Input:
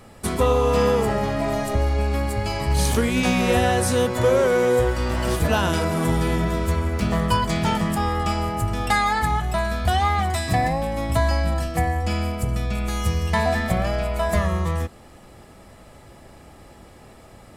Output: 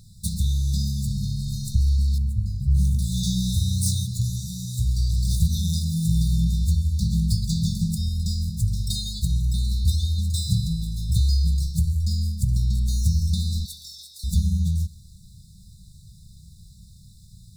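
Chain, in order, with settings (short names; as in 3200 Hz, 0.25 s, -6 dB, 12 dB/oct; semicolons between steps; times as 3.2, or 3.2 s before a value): median filter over 3 samples; 2.18–2.99 resonant high shelf 2900 Hz -13 dB, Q 3; 13.65–14.24 frequency shift +430 Hz; brick-wall FIR band-stop 200–3500 Hz; multi-head echo 65 ms, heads first and second, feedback 58%, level -24 dB; gain +2.5 dB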